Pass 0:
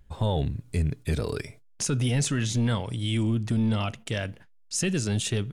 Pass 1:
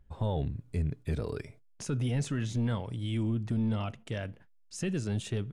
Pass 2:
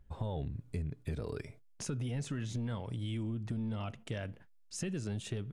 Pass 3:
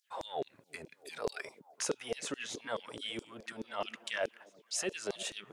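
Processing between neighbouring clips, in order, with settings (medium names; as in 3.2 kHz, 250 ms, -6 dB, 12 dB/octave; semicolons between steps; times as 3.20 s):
treble shelf 2.5 kHz -10 dB; trim -5 dB
compression, threshold -34 dBFS, peak gain reduction 7.5 dB
LFO high-pass saw down 4.7 Hz 390–6100 Hz; repeats whose band climbs or falls 332 ms, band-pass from 210 Hz, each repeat 0.7 oct, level -11 dB; trim +6.5 dB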